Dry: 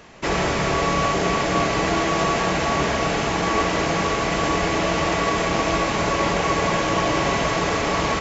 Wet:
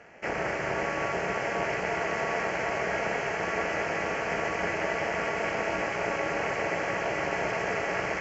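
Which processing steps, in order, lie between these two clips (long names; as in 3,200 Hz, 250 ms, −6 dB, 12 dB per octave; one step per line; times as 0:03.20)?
high-frequency loss of the air 130 metres
in parallel at +3 dB: brickwall limiter −19.5 dBFS, peak gain reduction 10.5 dB
on the sum: phaser with its sweep stopped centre 1,000 Hz, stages 6
amplitude modulation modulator 250 Hz, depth 90%
high-pass filter 240 Hz 6 dB per octave
on a send: delay with a high-pass on its return 223 ms, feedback 84%, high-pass 1,800 Hz, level −5.5 dB
on the sum: level −4.5 dB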